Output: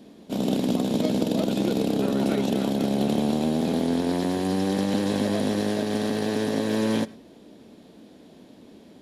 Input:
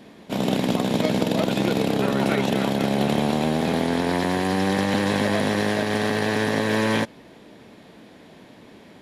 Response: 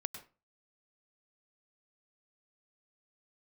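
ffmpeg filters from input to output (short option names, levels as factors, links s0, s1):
-filter_complex "[0:a]equalizer=f=125:t=o:w=1:g=-5,equalizer=f=250:t=o:w=1:g=4,equalizer=f=1000:t=o:w=1:g=-5,equalizer=f=2000:t=o:w=1:g=-9,asplit=2[s0][s1];[1:a]atrim=start_sample=2205,afade=t=out:st=0.17:d=0.01,atrim=end_sample=7938[s2];[s1][s2]afir=irnorm=-1:irlink=0,volume=0.447[s3];[s0][s3]amix=inputs=2:normalize=0,volume=0.562"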